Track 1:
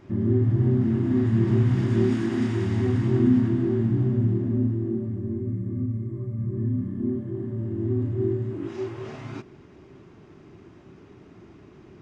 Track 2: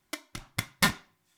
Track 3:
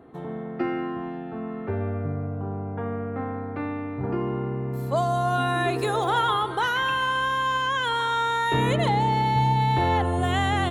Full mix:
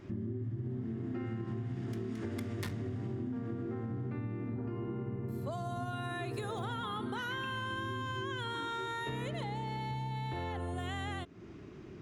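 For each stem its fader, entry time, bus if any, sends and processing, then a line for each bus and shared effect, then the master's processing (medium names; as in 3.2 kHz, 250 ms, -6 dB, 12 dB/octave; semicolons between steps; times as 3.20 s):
-0.5 dB, 0.00 s, bus A, no send, none
-6.5 dB, 1.80 s, no bus, no send, cycle switcher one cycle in 3, muted
-5.5 dB, 0.55 s, bus A, no send, level rider gain up to 6.5 dB
bus A: 0.0 dB, peaking EQ 850 Hz -4.5 dB 0.77 oct; compression, threshold -23 dBFS, peak gain reduction 8.5 dB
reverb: none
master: compression 2.5:1, threshold -41 dBFS, peak gain reduction 12.5 dB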